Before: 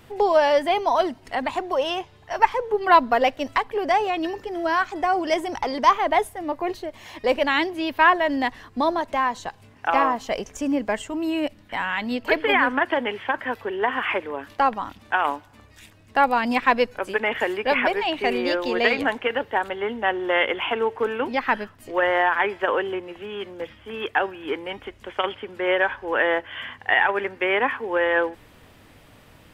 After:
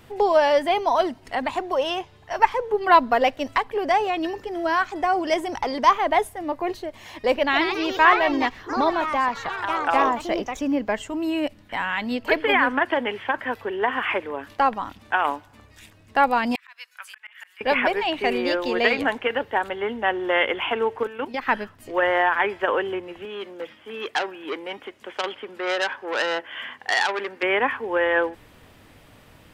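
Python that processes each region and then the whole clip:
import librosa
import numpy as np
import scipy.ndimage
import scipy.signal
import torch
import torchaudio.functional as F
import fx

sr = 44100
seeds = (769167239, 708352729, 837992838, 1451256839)

y = fx.chain(x, sr, fx.peak_eq(hz=8800.0, db=-11.5, octaves=0.51),
    fx.echo_pitch(ms=157, semitones=3, count=3, db_per_echo=-6.0), at=(7.35, 11.02))
y = fx.chain(y, sr, fx.highpass(hz=1300.0, slope=24),
    fx.high_shelf(hz=7700.0, db=8.5),
    fx.auto_swell(attack_ms=572.0), at=(16.55, 17.61))
y = fx.chain(y, sr, fx.high_shelf(hz=5400.0, db=6.5),
    fx.level_steps(step_db=13), at=(21.03, 21.47))
y = fx.chain(y, sr, fx.highpass(hz=220.0, slope=12),
    fx.transformer_sat(knee_hz=3000.0), at=(23.25, 27.43))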